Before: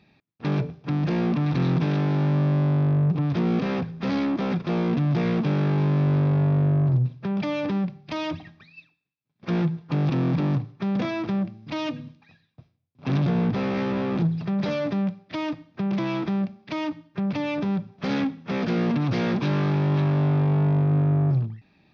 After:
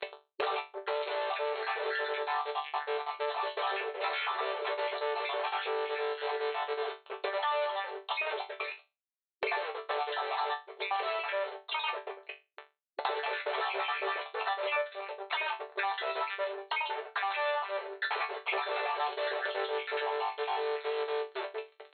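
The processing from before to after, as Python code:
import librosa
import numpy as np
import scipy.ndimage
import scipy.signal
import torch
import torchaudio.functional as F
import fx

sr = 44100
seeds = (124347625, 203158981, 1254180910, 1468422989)

y = fx.spec_dropout(x, sr, seeds[0], share_pct=54)
y = fx.dynamic_eq(y, sr, hz=1400.0, q=0.9, threshold_db=-48.0, ratio=4.0, max_db=-6)
y = fx.level_steps(y, sr, step_db=18, at=(14.77, 15.2))
y = fx.air_absorb(y, sr, metres=160.0)
y = fx.fuzz(y, sr, gain_db=46.0, gate_db=-55.0)
y = fx.brickwall_bandpass(y, sr, low_hz=370.0, high_hz=4300.0)
y = fx.resonator_bank(y, sr, root=50, chord='sus4', decay_s=0.21)
y = fx.band_squash(y, sr, depth_pct=100)
y = y * librosa.db_to_amplitude(-3.5)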